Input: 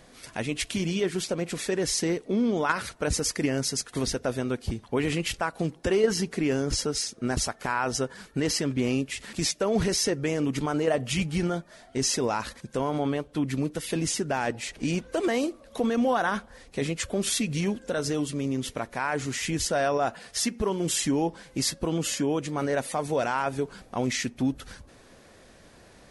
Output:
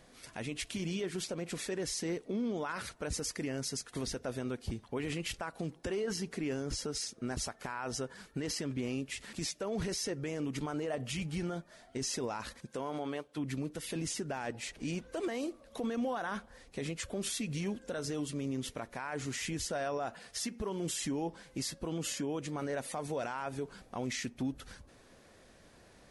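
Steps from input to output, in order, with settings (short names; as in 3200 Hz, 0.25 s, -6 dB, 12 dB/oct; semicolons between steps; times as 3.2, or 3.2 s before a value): 12.65–13.36 HPF 180 Hz -> 600 Hz 6 dB/oct; limiter -21 dBFS, peak gain reduction 9.5 dB; gain -6.5 dB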